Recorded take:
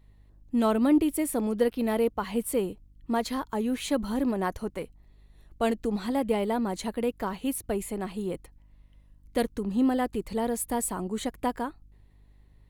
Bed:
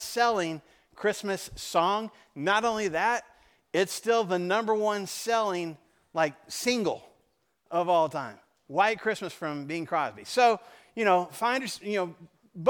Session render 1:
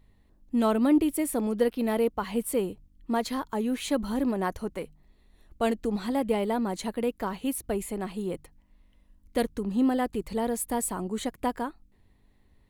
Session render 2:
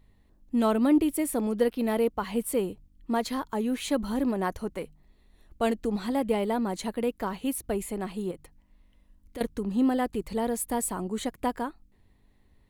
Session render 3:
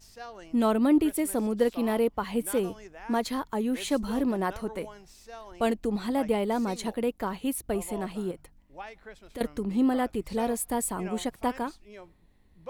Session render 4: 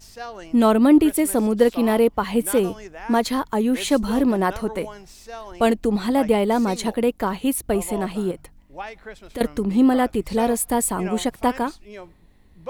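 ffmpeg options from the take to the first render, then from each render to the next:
-af "bandreject=f=50:t=h:w=4,bandreject=f=100:t=h:w=4,bandreject=f=150:t=h:w=4"
-filter_complex "[0:a]asettb=1/sr,asplit=3[s0][s1][s2];[s0]atrim=end=8.314[s3];[s1]atrim=start=8.31:end=9.41,asetpts=PTS-STARTPTS,afade=t=in:d=0.004:c=qsin,afade=t=out:st=1.096:d=0.004:c=qsin,acompressor=threshold=0.01:ratio=2.5:attack=3.2:release=140:knee=1:detection=peak[s4];[s2]atrim=start=9.406[s5];[s3][s4]acrossfade=d=0.004:c1=hsin:c2=qsin[s6];[s6][s5]acrossfade=d=0.004:c1=qsin:c2=hsin"
-filter_complex "[1:a]volume=0.119[s0];[0:a][s0]amix=inputs=2:normalize=0"
-af "volume=2.51"

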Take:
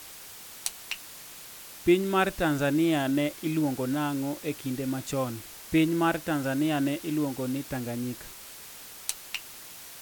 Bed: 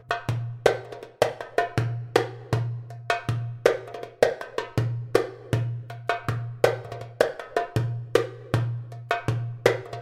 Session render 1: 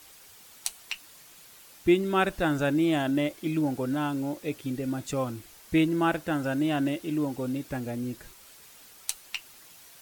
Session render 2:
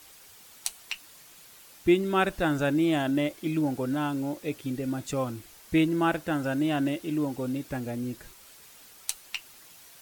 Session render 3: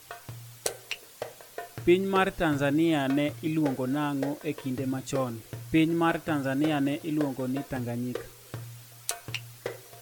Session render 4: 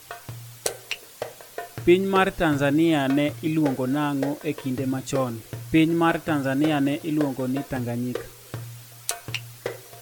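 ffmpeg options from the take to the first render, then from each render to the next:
-af "afftdn=nr=8:nf=-45"
-af anull
-filter_complex "[1:a]volume=0.168[s0];[0:a][s0]amix=inputs=2:normalize=0"
-af "volume=1.68,alimiter=limit=0.708:level=0:latency=1"

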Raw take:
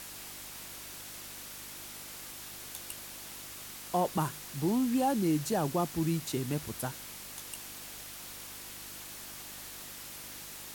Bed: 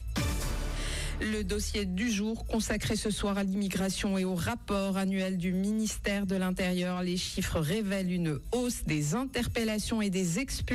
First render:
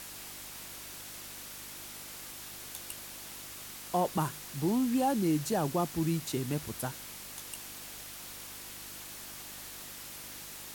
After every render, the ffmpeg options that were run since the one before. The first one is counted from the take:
-af anull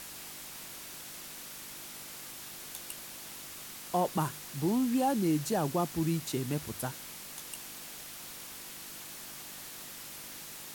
-af "bandreject=f=50:t=h:w=4,bandreject=f=100:t=h:w=4"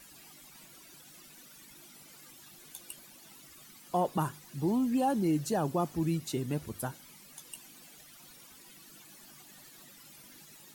-af "afftdn=nr=14:nf=-46"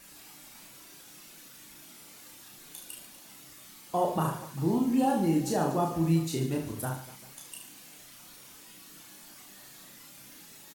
-filter_complex "[0:a]asplit=2[s0][s1];[s1]adelay=37,volume=0.501[s2];[s0][s2]amix=inputs=2:normalize=0,asplit=2[s3][s4];[s4]aecho=0:1:30|75|142.5|243.8|395.6:0.631|0.398|0.251|0.158|0.1[s5];[s3][s5]amix=inputs=2:normalize=0"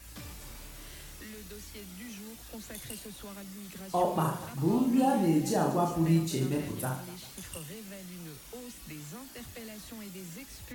-filter_complex "[1:a]volume=0.178[s0];[0:a][s0]amix=inputs=2:normalize=0"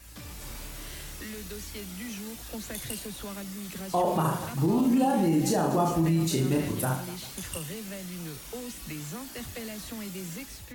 -af "alimiter=limit=0.075:level=0:latency=1:release=43,dynaudnorm=f=100:g=7:m=2"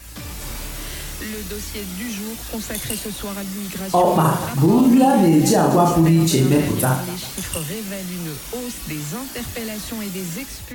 -af "volume=3.16"

